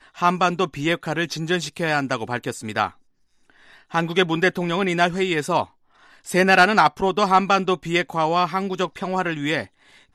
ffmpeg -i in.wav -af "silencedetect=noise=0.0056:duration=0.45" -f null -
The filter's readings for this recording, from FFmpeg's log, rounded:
silence_start: 2.93
silence_end: 3.50 | silence_duration: 0.57